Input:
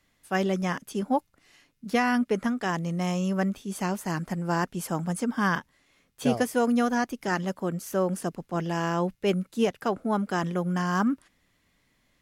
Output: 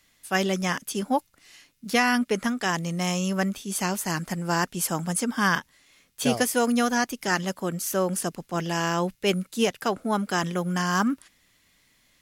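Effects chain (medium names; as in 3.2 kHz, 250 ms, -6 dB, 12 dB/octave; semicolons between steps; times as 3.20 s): treble shelf 2 kHz +11 dB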